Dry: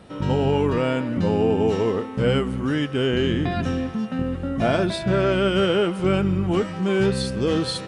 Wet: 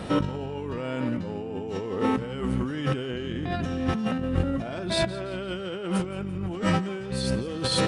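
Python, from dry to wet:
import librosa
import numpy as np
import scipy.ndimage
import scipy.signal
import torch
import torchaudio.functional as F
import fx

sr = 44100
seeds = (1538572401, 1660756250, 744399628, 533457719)

p1 = fx.over_compress(x, sr, threshold_db=-32.0, ratio=-1.0)
p2 = p1 + fx.echo_thinned(p1, sr, ms=170, feedback_pct=48, hz=420.0, wet_db=-17.5, dry=0)
y = F.gain(torch.from_numpy(p2), 2.5).numpy()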